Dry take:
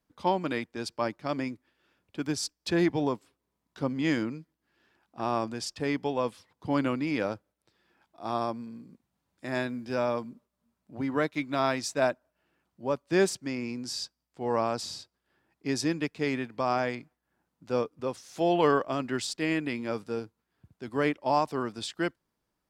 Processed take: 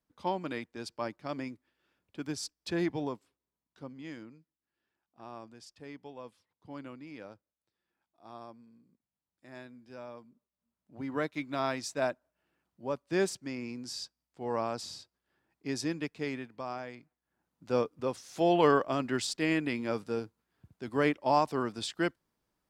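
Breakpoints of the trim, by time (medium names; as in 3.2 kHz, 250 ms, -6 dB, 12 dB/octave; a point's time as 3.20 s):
2.95 s -6 dB
4.11 s -17 dB
10.29 s -17 dB
11.19 s -5 dB
16.16 s -5 dB
16.87 s -13 dB
17.71 s -0.5 dB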